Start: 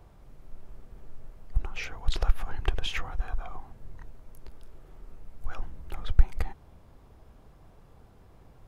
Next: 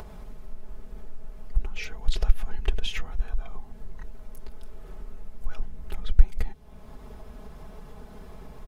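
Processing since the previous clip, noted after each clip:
dynamic equaliser 1,100 Hz, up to −8 dB, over −56 dBFS, Q 0.87
comb filter 4.7 ms, depth 74%
in parallel at −1 dB: upward compression, threshold −22 dBFS
on the sum: level −6 dB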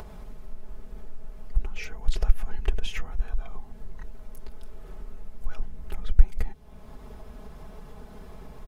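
dynamic equaliser 3,700 Hz, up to −6 dB, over −57 dBFS, Q 1.7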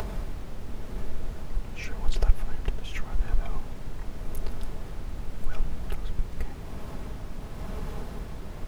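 downward compressor 2 to 1, threshold −27 dBFS, peak gain reduction 12 dB
amplitude tremolo 0.89 Hz, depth 68%
background noise brown −43 dBFS
level +8 dB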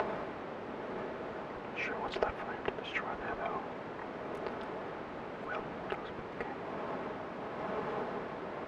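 band-pass filter 360–2,000 Hz
level +7.5 dB

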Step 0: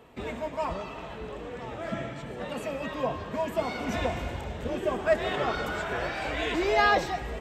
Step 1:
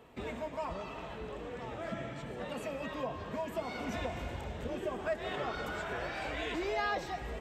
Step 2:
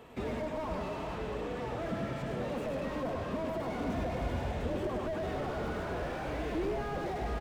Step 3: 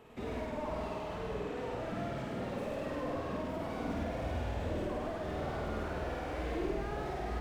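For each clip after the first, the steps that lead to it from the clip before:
downward compressor 2 to 1, threshold −33 dBFS, peak gain reduction 8.5 dB; level −3.5 dB
on a send: multi-tap delay 102/216/458 ms −5/−20/−10 dB; on the sum: slew-rate limiting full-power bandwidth 7.8 Hz; level +4.5 dB
tape wow and flutter 63 cents; on a send: flutter between parallel walls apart 8.7 metres, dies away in 0.99 s; on the sum: level −5 dB

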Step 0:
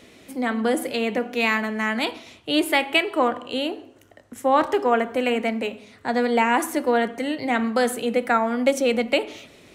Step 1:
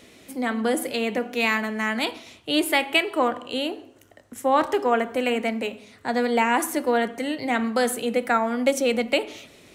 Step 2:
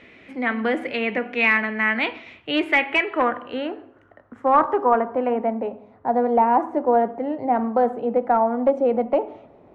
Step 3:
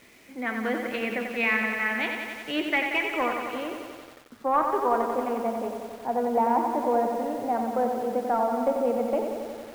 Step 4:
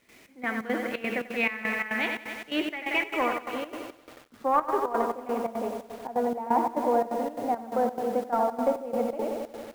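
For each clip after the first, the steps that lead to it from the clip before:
high-shelf EQ 5,400 Hz +5 dB; level −1.5 dB
wave folding −13 dBFS; low-pass filter sweep 2,200 Hz → 830 Hz, 0:02.71–0:05.64
bit-depth reduction 8 bits, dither none; feedback echo at a low word length 91 ms, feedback 80%, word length 7 bits, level −6 dB; level −7 dB
log-companded quantiser 8 bits; gate pattern ".xx..xx.xxx.xx" 173 BPM −12 dB

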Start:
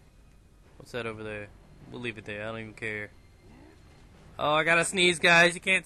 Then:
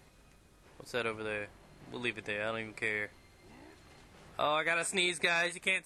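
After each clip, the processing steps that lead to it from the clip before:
low-shelf EQ 240 Hz −10 dB
downward compressor 8 to 1, threshold −29 dBFS, peak gain reduction 13.5 dB
level +2 dB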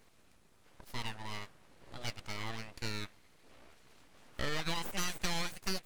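full-wave rectification
level −2.5 dB

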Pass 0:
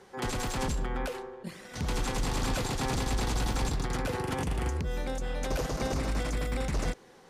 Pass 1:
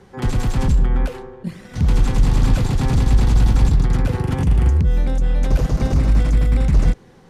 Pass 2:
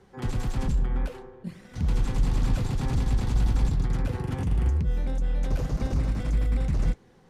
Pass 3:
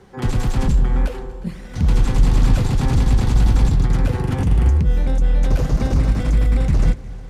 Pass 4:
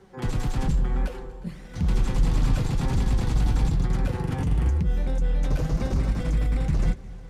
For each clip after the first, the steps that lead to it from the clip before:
bass and treble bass +14 dB, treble −3 dB; level +3.5 dB
flanger 1.7 Hz, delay 2.3 ms, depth 8.1 ms, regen −66%; level −5 dB
echo machine with several playback heads 120 ms, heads second and third, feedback 57%, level −21.5 dB; level +9 dB
flanger 1 Hz, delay 5.1 ms, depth 1.8 ms, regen +64%; level −2 dB

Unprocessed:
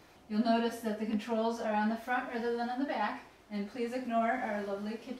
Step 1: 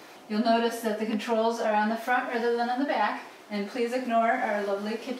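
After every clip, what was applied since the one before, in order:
high-pass filter 270 Hz 12 dB per octave
in parallel at +2.5 dB: downward compressor, threshold −40 dBFS, peak gain reduction 13.5 dB
on the sum: level +4.5 dB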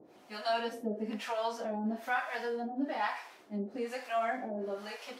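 two-band tremolo in antiphase 1.1 Hz, depth 100%, crossover 590 Hz
level −3.5 dB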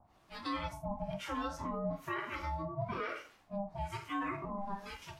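brickwall limiter −27 dBFS, peak gain reduction 6 dB
ring modulation 400 Hz
noise reduction from a noise print of the clip's start 6 dB
level +1 dB

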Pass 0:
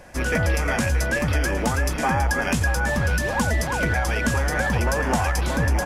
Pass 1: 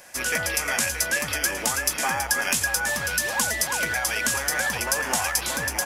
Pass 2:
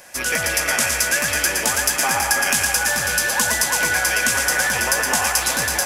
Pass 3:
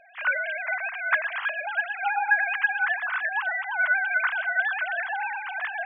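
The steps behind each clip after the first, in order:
spectral tilt +4 dB per octave; level −3 dB
feedback echo with a high-pass in the loop 117 ms, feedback 75%, high-pass 320 Hz, level −5 dB; level +3.5 dB
three sine waves on the formant tracks; level −7 dB

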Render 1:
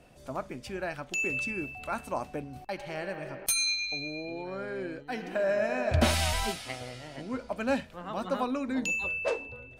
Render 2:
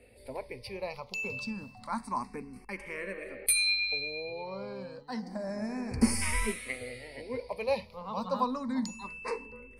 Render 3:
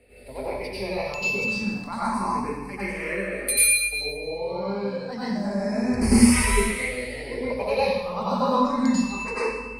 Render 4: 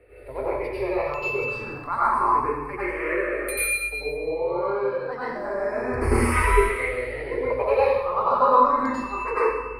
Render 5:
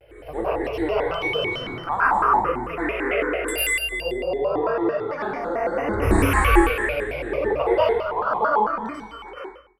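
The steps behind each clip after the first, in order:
gain on a spectral selection 0:05.19–0:06.22, 870–4,300 Hz −10 dB; EQ curve with evenly spaced ripples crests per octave 0.91, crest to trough 12 dB; frequency shifter mixed with the dry sound +0.29 Hz
dense smooth reverb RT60 1 s, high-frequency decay 0.9×, pre-delay 80 ms, DRR −10 dB
drawn EQ curve 140 Hz 0 dB, 200 Hz −25 dB, 320 Hz +5 dB, 800 Hz −1 dB, 1,200 Hz +9 dB, 6,000 Hz −20 dB, 13,000 Hz −7 dB; level +2 dB
fade-out on the ending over 2.37 s; dynamic equaliser 6,600 Hz, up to −6 dB, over −50 dBFS, Q 1.3; pitch modulation by a square or saw wave square 4.5 Hz, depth 250 cents; level +2.5 dB

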